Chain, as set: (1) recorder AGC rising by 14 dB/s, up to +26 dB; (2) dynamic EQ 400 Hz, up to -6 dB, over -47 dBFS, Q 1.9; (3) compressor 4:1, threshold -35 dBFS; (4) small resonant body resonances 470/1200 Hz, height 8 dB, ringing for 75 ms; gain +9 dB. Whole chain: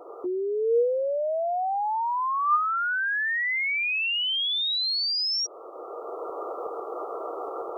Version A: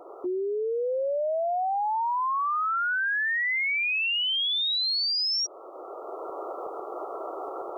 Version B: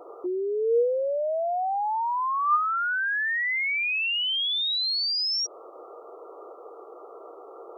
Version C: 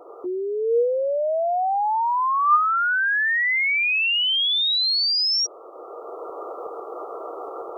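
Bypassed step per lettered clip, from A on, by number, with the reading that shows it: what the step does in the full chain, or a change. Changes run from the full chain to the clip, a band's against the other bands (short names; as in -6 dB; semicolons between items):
4, 500 Hz band -2.5 dB; 1, momentary loudness spread change -2 LU; 3, mean gain reduction 3.0 dB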